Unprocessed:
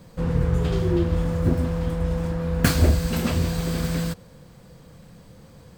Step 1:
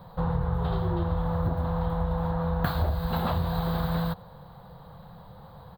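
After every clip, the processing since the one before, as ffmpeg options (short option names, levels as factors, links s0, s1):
-af "firequalizer=gain_entry='entry(180,0);entry(250,-11);entry(810,12);entry(2400,-12);entry(3900,3);entry(5600,-28);entry(14000,0)':delay=0.05:min_phase=1,acompressor=threshold=0.0708:ratio=6"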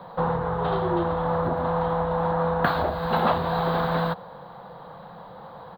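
-filter_complex "[0:a]acrossover=split=210 3700:gain=0.1 1 0.141[s0][s1][s2];[s0][s1][s2]amix=inputs=3:normalize=0,volume=2.82"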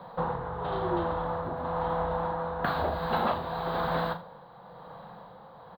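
-filter_complex "[0:a]asplit=2[s0][s1];[s1]aecho=0:1:39|80:0.335|0.15[s2];[s0][s2]amix=inputs=2:normalize=0,tremolo=f=1:d=0.44,volume=0.668"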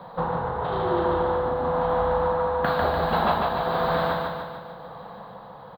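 -af "aecho=1:1:148|296|444|592|740|888|1036|1184:0.708|0.404|0.23|0.131|0.0747|0.0426|0.0243|0.0138,volume=1.5"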